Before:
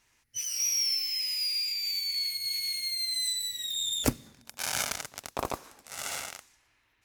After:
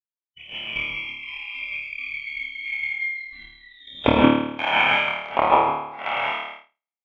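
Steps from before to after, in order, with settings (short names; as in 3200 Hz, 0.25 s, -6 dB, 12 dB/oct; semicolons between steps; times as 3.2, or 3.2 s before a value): tracing distortion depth 0.035 ms; rippled Chebyshev low-pass 3300 Hz, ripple 9 dB; non-linear reverb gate 0.19 s rising, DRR -8 dB; transient shaper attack +12 dB, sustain -12 dB; spectral noise reduction 20 dB; flutter echo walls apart 4.6 m, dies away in 0.8 s; expander -40 dBFS; HPF 140 Hz 6 dB/oct; gain +4.5 dB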